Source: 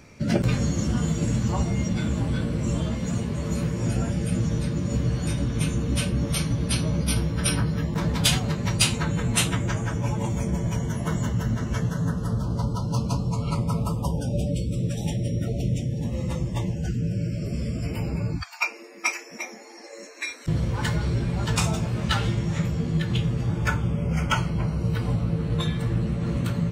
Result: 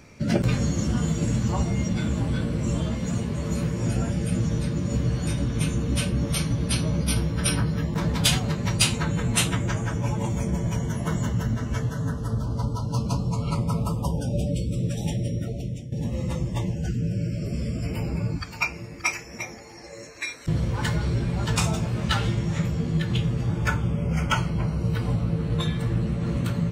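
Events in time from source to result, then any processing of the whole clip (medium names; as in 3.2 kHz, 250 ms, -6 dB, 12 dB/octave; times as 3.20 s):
11.47–13.06 s: comb of notches 180 Hz
15.19–15.92 s: fade out, to -12 dB
17.28–18.43 s: echo throw 580 ms, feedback 50%, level -13 dB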